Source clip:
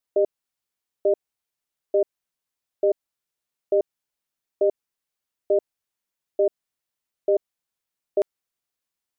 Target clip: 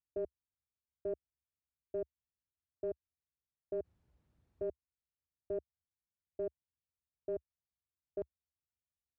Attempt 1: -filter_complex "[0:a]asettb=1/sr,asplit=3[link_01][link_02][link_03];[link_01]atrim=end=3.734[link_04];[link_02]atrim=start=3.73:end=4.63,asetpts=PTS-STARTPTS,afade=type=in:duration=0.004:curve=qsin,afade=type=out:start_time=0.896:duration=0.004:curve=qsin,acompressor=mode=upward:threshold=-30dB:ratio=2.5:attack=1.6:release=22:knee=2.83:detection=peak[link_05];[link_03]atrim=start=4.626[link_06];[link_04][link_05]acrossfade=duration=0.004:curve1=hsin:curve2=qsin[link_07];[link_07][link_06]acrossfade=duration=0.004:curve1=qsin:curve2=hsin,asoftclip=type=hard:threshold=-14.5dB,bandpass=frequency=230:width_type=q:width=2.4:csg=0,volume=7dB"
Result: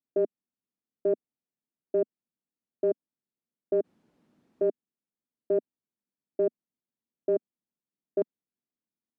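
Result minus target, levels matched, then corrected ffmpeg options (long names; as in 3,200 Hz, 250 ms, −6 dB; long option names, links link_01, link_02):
125 Hz band −3.5 dB
-filter_complex "[0:a]asettb=1/sr,asplit=3[link_01][link_02][link_03];[link_01]atrim=end=3.734[link_04];[link_02]atrim=start=3.73:end=4.63,asetpts=PTS-STARTPTS,afade=type=in:duration=0.004:curve=qsin,afade=type=out:start_time=0.896:duration=0.004:curve=qsin,acompressor=mode=upward:threshold=-30dB:ratio=2.5:attack=1.6:release=22:knee=2.83:detection=peak[link_05];[link_03]atrim=start=4.626[link_06];[link_04][link_05]acrossfade=duration=0.004:curve1=hsin:curve2=qsin[link_07];[link_07][link_06]acrossfade=duration=0.004:curve1=qsin:curve2=hsin,asoftclip=type=hard:threshold=-14.5dB,bandpass=frequency=72:width_type=q:width=2.4:csg=0,volume=7dB"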